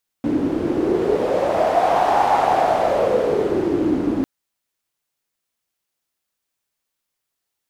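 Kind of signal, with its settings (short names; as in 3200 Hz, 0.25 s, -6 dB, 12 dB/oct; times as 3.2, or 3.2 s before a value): wind-like swept noise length 4.00 s, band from 290 Hz, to 790 Hz, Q 5.6, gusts 1, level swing 3 dB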